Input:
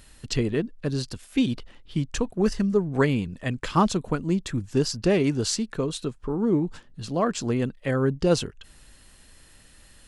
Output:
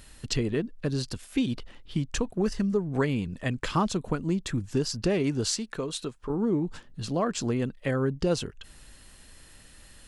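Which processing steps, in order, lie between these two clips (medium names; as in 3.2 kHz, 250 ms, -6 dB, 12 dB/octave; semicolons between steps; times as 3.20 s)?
compression 2:1, threshold -27 dBFS, peak gain reduction 7 dB; 5.51–6.30 s: bass shelf 320 Hz -8 dB; trim +1 dB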